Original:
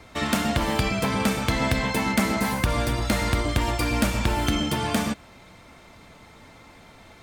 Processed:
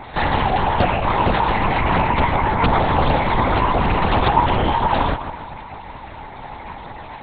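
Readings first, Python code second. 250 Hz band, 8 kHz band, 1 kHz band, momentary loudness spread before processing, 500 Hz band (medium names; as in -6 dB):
+1.0 dB, under -40 dB, +12.5 dB, 2 LU, +7.0 dB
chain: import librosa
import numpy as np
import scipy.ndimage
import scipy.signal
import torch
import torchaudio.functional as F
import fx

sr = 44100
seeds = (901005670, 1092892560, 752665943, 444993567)

p1 = fx.highpass(x, sr, hz=93.0, slope=6)
p2 = fx.peak_eq(p1, sr, hz=780.0, db=9.5, octaves=1.4)
p3 = p2 + 0.82 * np.pad(p2, (int(1.1 * sr / 1000.0), 0))[:len(p2)]
p4 = fx.over_compress(p3, sr, threshold_db=-24.0, ratio=-0.5)
p5 = p3 + (p4 * librosa.db_to_amplitude(-1.0))
p6 = p5 * np.sin(2.0 * np.pi * 95.0 * np.arange(len(p5)) / sr)
p7 = fx.chorus_voices(p6, sr, voices=4, hz=0.45, base_ms=11, depth_ms=3.9, mix_pct=70)
p8 = p7 + fx.echo_banded(p7, sr, ms=144, feedback_pct=60, hz=830.0, wet_db=-9.5, dry=0)
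p9 = fx.lpc_vocoder(p8, sr, seeds[0], excitation='whisper', order=8)
p10 = fx.doppler_dist(p9, sr, depth_ms=0.24)
y = p10 * librosa.db_to_amplitude(3.5)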